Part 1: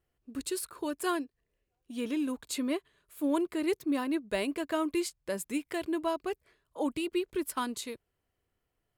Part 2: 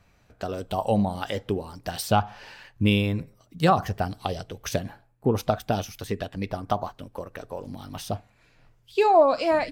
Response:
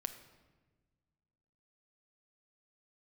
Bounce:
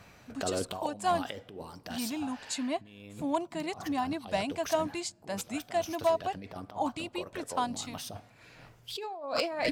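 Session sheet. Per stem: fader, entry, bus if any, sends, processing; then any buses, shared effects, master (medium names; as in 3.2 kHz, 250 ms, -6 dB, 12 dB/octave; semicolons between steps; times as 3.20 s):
+3.0 dB, 0.00 s, send -24 dB, FFT filter 220 Hz 0 dB, 490 Hz -19 dB, 700 Hz +9 dB, 1.3 kHz -7 dB, 7.3 kHz 0 dB, 14 kHz -24 dB
+2.5 dB, 0.00 s, send -19.5 dB, compressor with a negative ratio -33 dBFS, ratio -1; auto duck -17 dB, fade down 1.50 s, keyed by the first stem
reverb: on, RT60 1.3 s, pre-delay 6 ms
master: overload inside the chain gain 18.5 dB; high-pass 150 Hz 6 dB/octave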